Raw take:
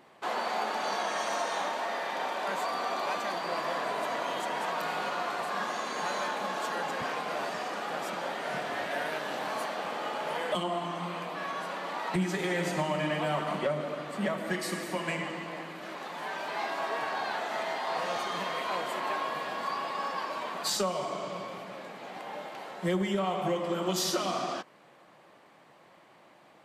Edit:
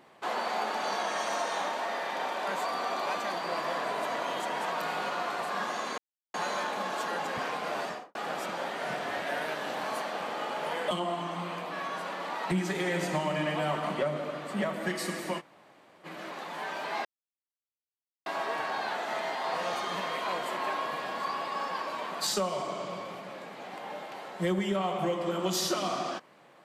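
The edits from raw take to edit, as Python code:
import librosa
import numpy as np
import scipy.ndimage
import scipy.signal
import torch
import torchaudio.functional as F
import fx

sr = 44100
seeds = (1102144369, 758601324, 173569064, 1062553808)

y = fx.studio_fade_out(x, sr, start_s=7.49, length_s=0.3)
y = fx.edit(y, sr, fx.insert_silence(at_s=5.98, length_s=0.36),
    fx.room_tone_fill(start_s=15.04, length_s=0.65, crossfade_s=0.04),
    fx.insert_silence(at_s=16.69, length_s=1.21), tone=tone)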